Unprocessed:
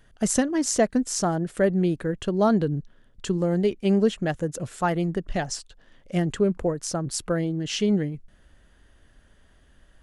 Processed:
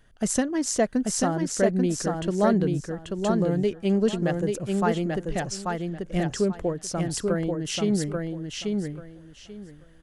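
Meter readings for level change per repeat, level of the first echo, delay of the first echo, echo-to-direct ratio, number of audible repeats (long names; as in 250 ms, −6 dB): −14.0 dB, −3.5 dB, 837 ms, −3.5 dB, 3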